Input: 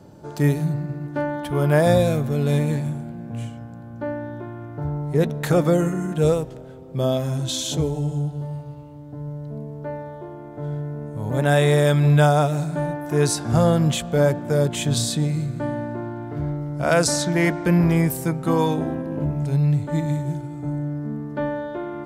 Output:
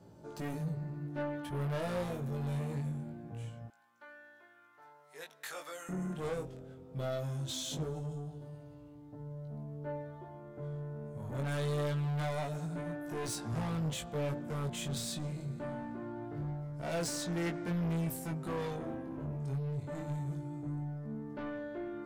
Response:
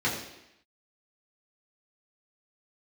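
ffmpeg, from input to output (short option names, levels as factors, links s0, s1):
-filter_complex "[0:a]asettb=1/sr,asplit=3[s0][s1][s2];[s0]atrim=end=3.684[s3];[s1]atrim=start=3.68:end=5.89,asetpts=PTS-STARTPTS,afade=t=in:d=0.004:c=qsin,afade=t=out:st=2.206:d=0.004:c=qsin,highpass=1400[s4];[s2]atrim=start=5.886[s5];[s3][s4]acrossfade=d=0.004:c1=hsin:c2=qsin[s6];[s6][s5]acrossfade=d=0.004:c1=qsin:c2=hsin,asoftclip=type=tanh:threshold=0.0708,flanger=delay=17.5:depth=4.9:speed=0.23,volume=0.422"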